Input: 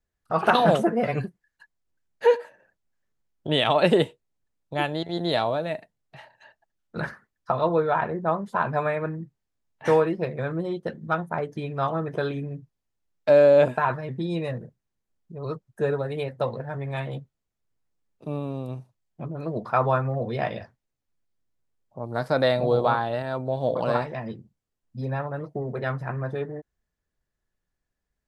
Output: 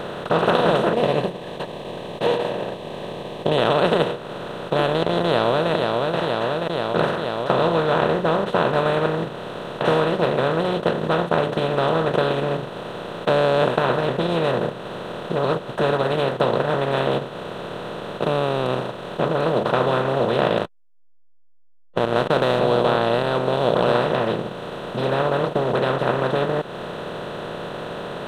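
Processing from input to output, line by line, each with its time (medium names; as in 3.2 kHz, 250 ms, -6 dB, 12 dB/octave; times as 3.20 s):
0.93–3.58 s: Butterworth band-stop 1.4 kHz, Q 0.8
5.25–5.71 s: echo throw 480 ms, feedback 50%, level -13 dB
20.57–22.60 s: hysteresis with a dead band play -33 dBFS
whole clip: spectral levelling over time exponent 0.2; bass shelf 71 Hz +10.5 dB; transient shaper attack +1 dB, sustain -5 dB; trim -7.5 dB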